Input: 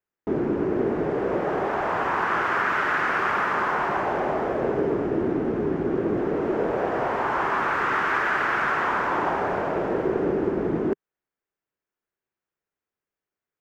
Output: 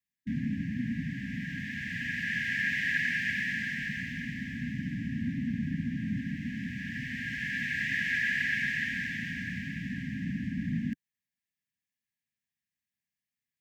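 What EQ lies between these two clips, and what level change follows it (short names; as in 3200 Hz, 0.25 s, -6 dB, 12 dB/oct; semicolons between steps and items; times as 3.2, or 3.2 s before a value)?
HPF 72 Hz; brick-wall FIR band-stop 270–1600 Hz; 0.0 dB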